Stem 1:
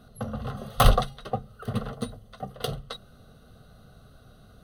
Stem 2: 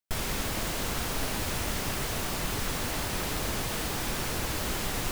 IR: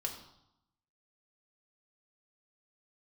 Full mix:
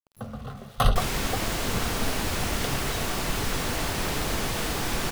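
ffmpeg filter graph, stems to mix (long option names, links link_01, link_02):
-filter_complex "[0:a]equalizer=frequency=510:width_type=o:width=0.43:gain=-2.5,volume=-4.5dB,asplit=2[link_01][link_02];[link_02]volume=-15dB[link_03];[1:a]adelay=850,volume=1.5dB,asplit=2[link_04][link_05];[link_05]volume=-9dB[link_06];[2:a]atrim=start_sample=2205[link_07];[link_03][link_06]amix=inputs=2:normalize=0[link_08];[link_08][link_07]afir=irnorm=-1:irlink=0[link_09];[link_01][link_04][link_09]amix=inputs=3:normalize=0,highshelf=frequency=8600:gain=-4.5,aeval=exprs='val(0)*gte(abs(val(0)),0.00422)':channel_layout=same"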